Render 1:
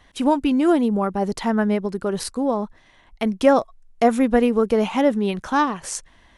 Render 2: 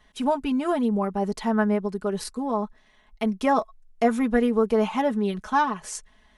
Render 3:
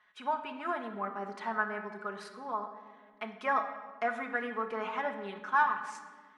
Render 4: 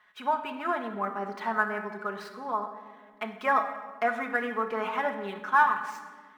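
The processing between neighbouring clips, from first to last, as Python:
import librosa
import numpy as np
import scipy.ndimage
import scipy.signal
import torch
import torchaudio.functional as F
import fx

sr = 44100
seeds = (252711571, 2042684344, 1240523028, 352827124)

y1 = fx.dynamic_eq(x, sr, hz=1100.0, q=1.2, threshold_db=-32.0, ratio=4.0, max_db=5)
y1 = y1 + 0.75 * np.pad(y1, (int(4.7 * sr / 1000.0), 0))[:len(y1)]
y1 = y1 * librosa.db_to_amplitude(-7.5)
y2 = fx.bandpass_q(y1, sr, hz=1500.0, q=1.9)
y2 = fx.room_shoebox(y2, sr, seeds[0], volume_m3=1500.0, walls='mixed', distance_m=0.96)
y3 = scipy.ndimage.median_filter(y2, 5, mode='constant')
y3 = y3 * librosa.db_to_amplitude(5.0)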